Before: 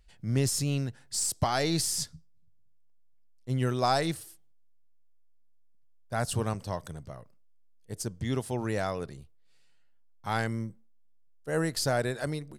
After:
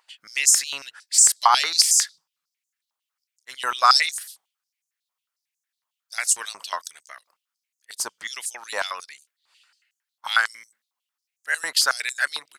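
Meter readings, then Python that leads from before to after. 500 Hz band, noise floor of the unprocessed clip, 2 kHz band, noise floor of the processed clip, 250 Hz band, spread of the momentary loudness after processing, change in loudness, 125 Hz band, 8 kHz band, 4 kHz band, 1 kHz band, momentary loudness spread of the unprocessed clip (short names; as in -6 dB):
-7.5 dB, -57 dBFS, +13.0 dB, under -85 dBFS, under -20 dB, 17 LU, +10.5 dB, under -35 dB, +14.5 dB, +13.5 dB, +10.0 dB, 16 LU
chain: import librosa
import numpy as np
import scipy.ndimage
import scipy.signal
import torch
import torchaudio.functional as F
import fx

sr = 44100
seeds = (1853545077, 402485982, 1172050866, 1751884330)

y = fx.hpss(x, sr, part='percussive', gain_db=8)
y = fx.filter_held_highpass(y, sr, hz=11.0, low_hz=990.0, high_hz=6700.0)
y = y * 10.0 ** (2.5 / 20.0)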